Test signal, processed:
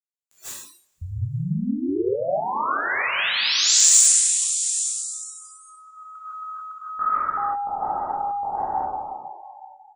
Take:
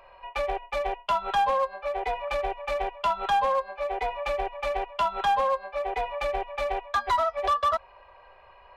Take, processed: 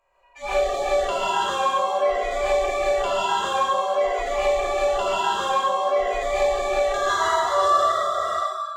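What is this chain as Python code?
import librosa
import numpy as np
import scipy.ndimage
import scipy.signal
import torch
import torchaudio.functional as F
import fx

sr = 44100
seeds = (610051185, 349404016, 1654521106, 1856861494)

p1 = fx.spec_trails(x, sr, decay_s=2.18)
p2 = fx.peak_eq(p1, sr, hz=7200.0, db=14.0, octaves=0.29)
p3 = fx.over_compress(p2, sr, threshold_db=-33.0, ratio=-1.0)
p4 = p2 + F.gain(torch.from_numpy(p3), 1.0).numpy()
p5 = np.clip(10.0 ** (4.0 / 20.0) * p4, -1.0, 1.0) / 10.0 ** (4.0 / 20.0)
p6 = p5 + fx.echo_feedback(p5, sr, ms=865, feedback_pct=20, wet_db=-20, dry=0)
p7 = fx.rev_gated(p6, sr, seeds[0], gate_ms=190, shape='rising', drr_db=-5.5)
p8 = fx.noise_reduce_blind(p7, sr, reduce_db=24)
y = F.gain(torch.from_numpy(p8), -8.0).numpy()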